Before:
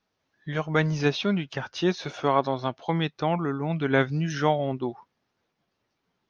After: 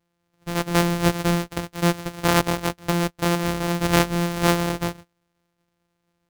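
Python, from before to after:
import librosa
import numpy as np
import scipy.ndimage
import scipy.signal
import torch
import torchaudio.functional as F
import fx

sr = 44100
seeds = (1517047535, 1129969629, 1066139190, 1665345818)

y = np.r_[np.sort(x[:len(x) // 256 * 256].reshape(-1, 256), axis=1).ravel(), x[len(x) // 256 * 256:]]
y = F.gain(torch.from_numpy(y), 3.5).numpy()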